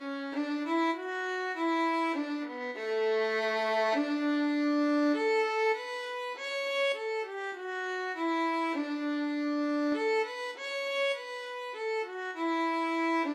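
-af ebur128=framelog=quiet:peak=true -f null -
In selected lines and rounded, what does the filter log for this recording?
Integrated loudness:
  I:         -31.1 LUFS
  Threshold: -41.1 LUFS
Loudness range:
  LRA:         3.4 LU
  Threshold: -50.9 LUFS
  LRA low:   -32.4 LUFS
  LRA high:  -29.0 LUFS
True peak:
  Peak:      -19.2 dBFS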